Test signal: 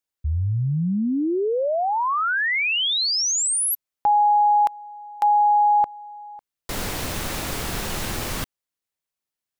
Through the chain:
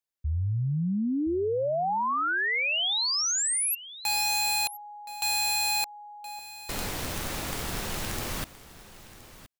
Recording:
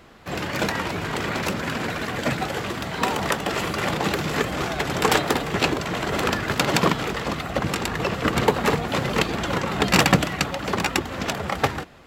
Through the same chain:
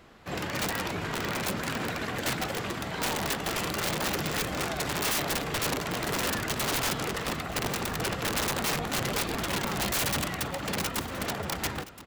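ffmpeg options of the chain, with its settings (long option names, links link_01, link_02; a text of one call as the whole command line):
ffmpeg -i in.wav -af "aeval=exprs='(mod(7.5*val(0)+1,2)-1)/7.5':channel_layout=same,aecho=1:1:1021:0.15,volume=-5dB" out.wav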